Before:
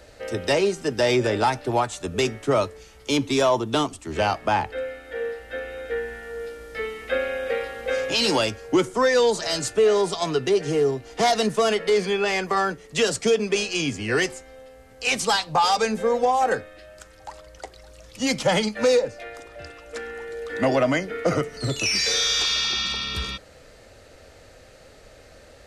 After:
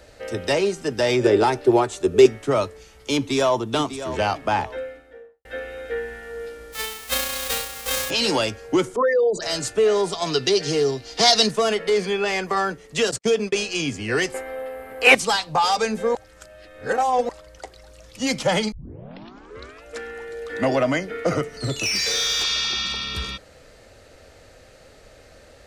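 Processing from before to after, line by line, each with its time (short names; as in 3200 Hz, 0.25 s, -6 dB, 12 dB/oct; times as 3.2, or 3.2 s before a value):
1.23–2.26 bell 380 Hz +14 dB 0.48 oct
3.15–3.57 echo throw 0.6 s, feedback 30%, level -11.5 dB
4.61–5.45 studio fade out
6.72–8.09 spectral whitening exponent 0.1
8.96–9.42 formant sharpening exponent 3
10.26–11.51 bell 4600 Hz +14.5 dB 1.1 oct
13.11–13.55 gate -31 dBFS, range -48 dB
14.34–15.15 EQ curve 140 Hz 0 dB, 290 Hz +11 dB, 630 Hz +15 dB, 2000 Hz +14 dB, 6200 Hz -6 dB, 12000 Hz +14 dB
16.15–17.29 reverse
18.72 tape start 1.12 s
21.73–22.44 overloaded stage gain 18.5 dB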